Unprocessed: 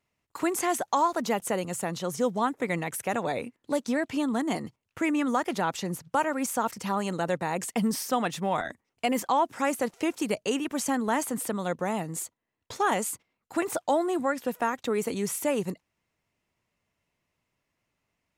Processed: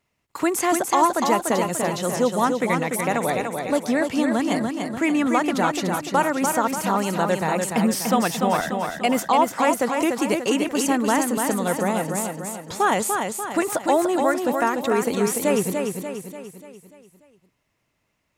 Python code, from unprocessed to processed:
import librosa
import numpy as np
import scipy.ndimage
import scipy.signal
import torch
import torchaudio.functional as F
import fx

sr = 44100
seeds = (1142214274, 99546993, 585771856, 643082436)

y = fx.echo_feedback(x, sr, ms=293, feedback_pct=50, wet_db=-5.0)
y = F.gain(torch.from_numpy(y), 5.5).numpy()